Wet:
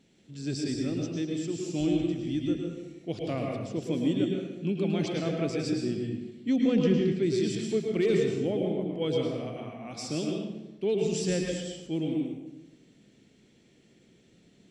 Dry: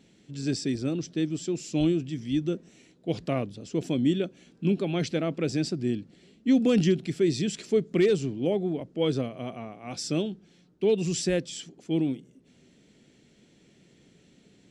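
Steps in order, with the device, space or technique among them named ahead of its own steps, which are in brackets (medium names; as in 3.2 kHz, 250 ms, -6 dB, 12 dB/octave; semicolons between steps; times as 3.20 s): 6.56–7.23 s: distance through air 130 m; bathroom (reverberation RT60 1.0 s, pre-delay 103 ms, DRR 0 dB); trim -5 dB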